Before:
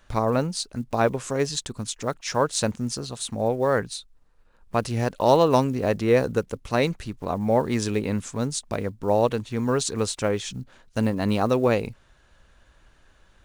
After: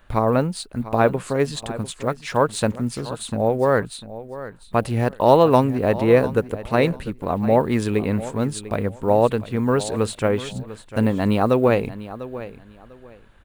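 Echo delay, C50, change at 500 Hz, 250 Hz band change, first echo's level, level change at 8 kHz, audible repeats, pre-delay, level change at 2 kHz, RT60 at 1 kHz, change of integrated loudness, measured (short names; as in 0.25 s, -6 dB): 0.697 s, none, +4.0 dB, +4.0 dB, -15.0 dB, -4.0 dB, 2, none, +3.0 dB, none, +4.0 dB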